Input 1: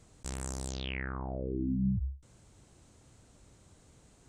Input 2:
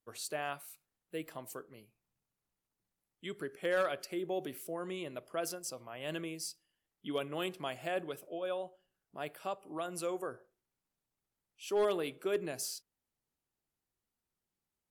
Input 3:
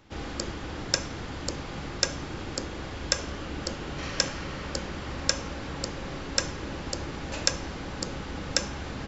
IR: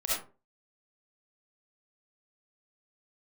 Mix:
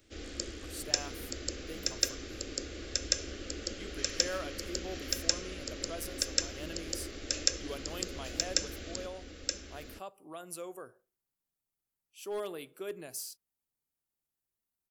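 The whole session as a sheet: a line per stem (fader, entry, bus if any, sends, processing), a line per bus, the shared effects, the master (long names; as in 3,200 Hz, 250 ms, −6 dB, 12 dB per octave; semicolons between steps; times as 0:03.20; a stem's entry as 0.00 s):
−17.0 dB, 0.00 s, no send, no echo send, downward compressor, threshold −40 dBFS, peak gain reduction 13 dB
−6.5 dB, 0.55 s, no send, no echo send, no processing
−5.5 dB, 0.00 s, no send, echo send −4.5 dB, phaser with its sweep stopped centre 380 Hz, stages 4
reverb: not used
echo: single-tap delay 925 ms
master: high-shelf EQ 8,300 Hz +11.5 dB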